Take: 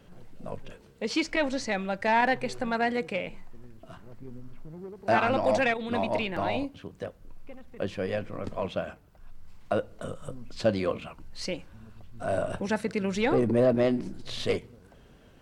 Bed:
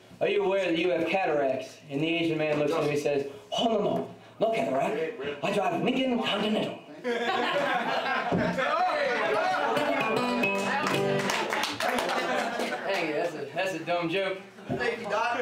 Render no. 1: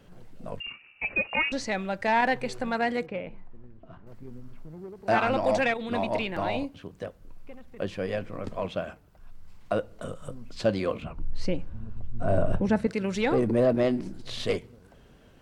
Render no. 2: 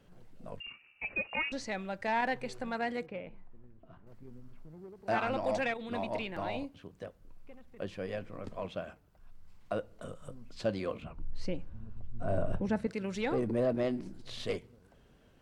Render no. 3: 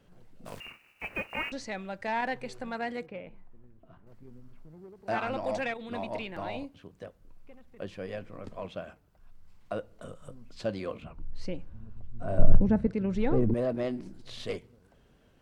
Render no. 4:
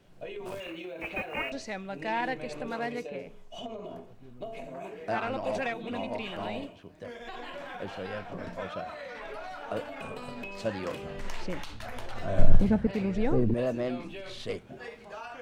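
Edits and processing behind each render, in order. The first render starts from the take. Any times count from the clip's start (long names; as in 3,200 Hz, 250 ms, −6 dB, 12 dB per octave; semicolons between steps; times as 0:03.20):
0:00.60–0:01.52: voice inversion scrambler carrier 2,800 Hz; 0:03.06–0:04.07: head-to-tape spacing loss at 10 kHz 33 dB; 0:11.02–0:12.87: spectral tilt −3 dB per octave
level −7.5 dB
0:00.45–0:01.50: compressing power law on the bin magnitudes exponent 0.57; 0:12.39–0:13.54: spectral tilt −3.5 dB per octave
mix in bed −14.5 dB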